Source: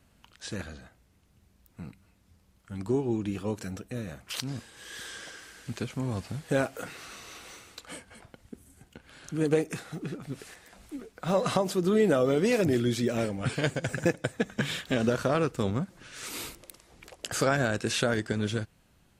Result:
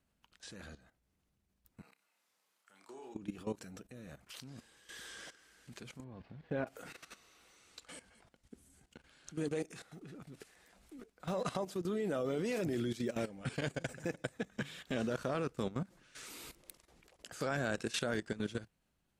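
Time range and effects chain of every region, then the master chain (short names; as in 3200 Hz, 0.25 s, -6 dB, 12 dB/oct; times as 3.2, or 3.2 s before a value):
1.81–3.15 HPF 740 Hz + flutter echo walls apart 5.2 m, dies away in 0.29 s
6.04–6.67 air absorption 340 m + notch 1300 Hz
7.56–9.82 LPF 9600 Hz + high shelf 3200 Hz +5.5 dB
whole clip: bell 100 Hz -8.5 dB 0.32 oct; level quantiser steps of 15 dB; gain -5 dB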